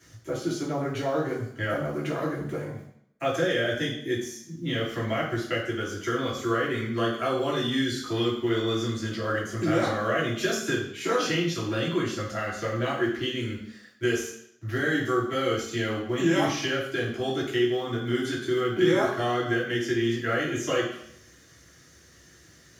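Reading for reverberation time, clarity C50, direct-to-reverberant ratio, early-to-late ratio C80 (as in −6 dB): 0.70 s, 4.5 dB, −6.0 dB, 7.5 dB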